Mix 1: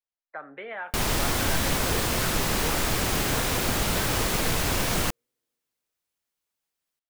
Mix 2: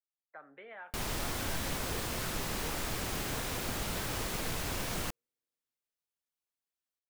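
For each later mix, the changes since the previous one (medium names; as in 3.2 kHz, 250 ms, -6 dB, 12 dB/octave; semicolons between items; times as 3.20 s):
speech -12.0 dB; background -10.5 dB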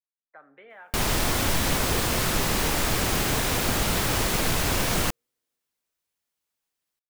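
speech: send +9.0 dB; background +11.5 dB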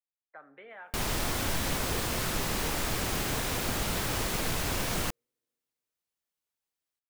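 background -6.5 dB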